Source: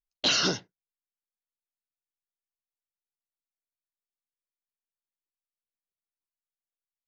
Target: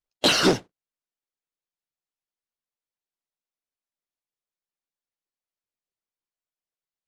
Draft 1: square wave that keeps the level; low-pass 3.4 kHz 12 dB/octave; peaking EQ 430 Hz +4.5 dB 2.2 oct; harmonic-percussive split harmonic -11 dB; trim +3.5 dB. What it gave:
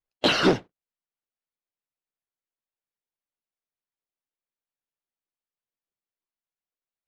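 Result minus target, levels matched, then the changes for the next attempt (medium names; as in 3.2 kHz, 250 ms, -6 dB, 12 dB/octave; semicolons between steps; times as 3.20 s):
8 kHz band -8.5 dB
change: low-pass 7.4 kHz 12 dB/octave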